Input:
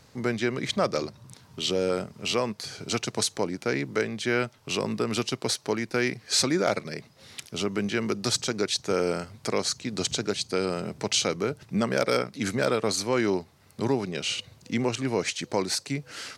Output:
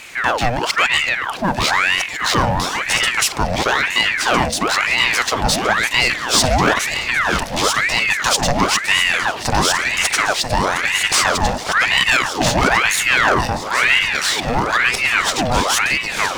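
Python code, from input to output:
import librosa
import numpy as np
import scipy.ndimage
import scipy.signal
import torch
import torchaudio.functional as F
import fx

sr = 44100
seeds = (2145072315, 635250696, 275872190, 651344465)

p1 = fx.echo_alternate(x, sr, ms=653, hz=2000.0, feedback_pct=66, wet_db=-3.5)
p2 = fx.power_curve(p1, sr, exponent=0.7)
p3 = p2 + fx.echo_single(p2, sr, ms=957, db=-23.5, dry=0)
p4 = fx.ring_lfo(p3, sr, carrier_hz=1400.0, swing_pct=75, hz=1.0)
y = F.gain(torch.from_numpy(p4), 8.0).numpy()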